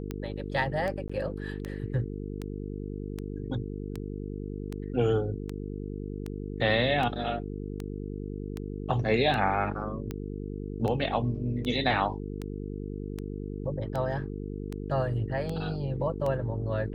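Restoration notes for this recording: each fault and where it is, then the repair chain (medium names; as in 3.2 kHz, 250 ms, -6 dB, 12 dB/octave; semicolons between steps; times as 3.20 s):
buzz 50 Hz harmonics 9 -36 dBFS
tick 78 rpm -21 dBFS
1.08–1.09 s: dropout 15 ms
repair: de-click; de-hum 50 Hz, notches 9; interpolate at 1.08 s, 15 ms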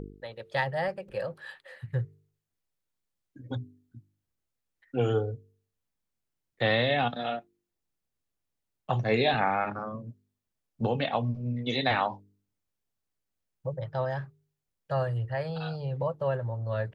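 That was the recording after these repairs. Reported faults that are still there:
nothing left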